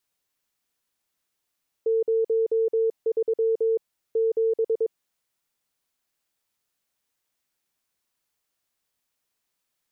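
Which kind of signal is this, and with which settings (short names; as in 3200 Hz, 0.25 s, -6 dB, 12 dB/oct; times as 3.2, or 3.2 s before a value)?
Morse "03 7" 22 wpm 450 Hz -19 dBFS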